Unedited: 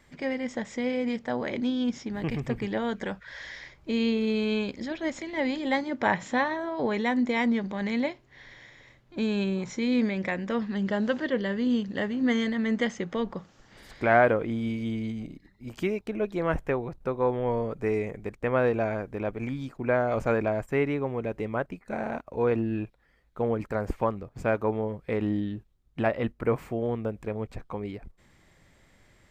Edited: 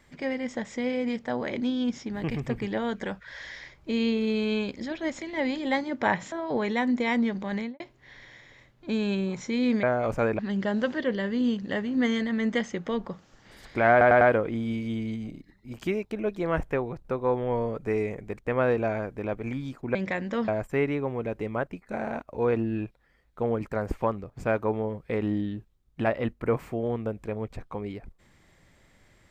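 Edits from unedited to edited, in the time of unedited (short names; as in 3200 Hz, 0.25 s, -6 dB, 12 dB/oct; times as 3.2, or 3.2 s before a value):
6.32–6.61 cut
7.83–8.09 studio fade out
10.12–10.65 swap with 19.91–20.47
14.17 stutter 0.10 s, 4 plays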